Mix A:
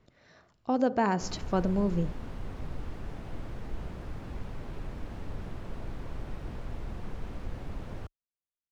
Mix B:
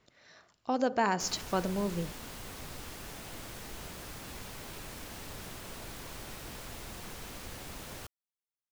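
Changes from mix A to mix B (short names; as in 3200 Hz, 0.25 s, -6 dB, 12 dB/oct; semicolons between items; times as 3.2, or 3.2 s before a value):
background: remove LPF 2100 Hz 6 dB/oct; master: add tilt +2.5 dB/oct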